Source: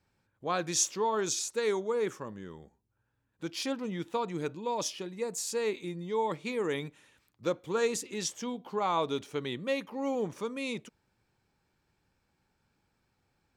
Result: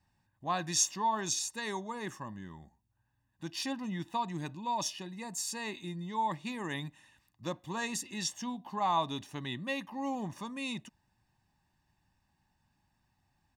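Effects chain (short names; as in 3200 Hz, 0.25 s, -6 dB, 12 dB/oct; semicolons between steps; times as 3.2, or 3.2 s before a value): comb 1.1 ms, depth 83%; gain -3 dB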